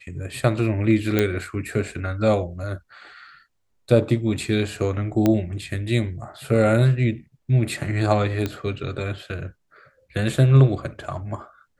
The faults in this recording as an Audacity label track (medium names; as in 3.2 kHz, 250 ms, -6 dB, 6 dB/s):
1.190000	1.190000	pop -6 dBFS
5.260000	5.260000	pop -7 dBFS
8.460000	8.460000	pop -12 dBFS